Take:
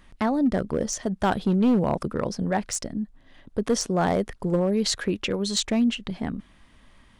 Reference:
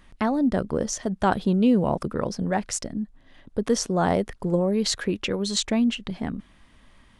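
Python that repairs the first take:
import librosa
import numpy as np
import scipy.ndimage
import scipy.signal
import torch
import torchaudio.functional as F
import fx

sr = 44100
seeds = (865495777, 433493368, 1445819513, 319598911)

y = fx.fix_declip(x, sr, threshold_db=-15.5)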